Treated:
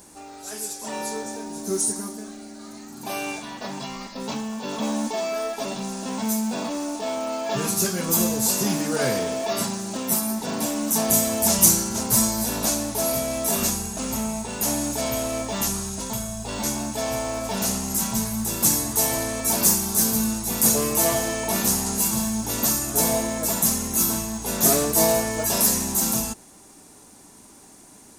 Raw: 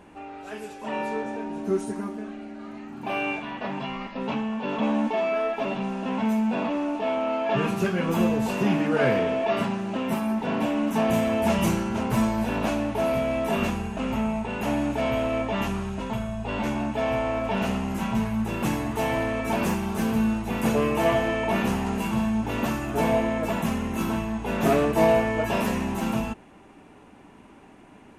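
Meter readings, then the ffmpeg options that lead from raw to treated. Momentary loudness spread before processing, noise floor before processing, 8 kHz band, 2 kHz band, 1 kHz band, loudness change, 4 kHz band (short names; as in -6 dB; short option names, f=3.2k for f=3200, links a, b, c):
9 LU, -50 dBFS, +22.5 dB, -2.5 dB, -2.0 dB, +3.5 dB, +8.0 dB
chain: -af "aexciter=amount=13.3:drive=5.4:freq=4.2k,acrusher=bits=6:mode=log:mix=0:aa=0.000001,volume=-2dB"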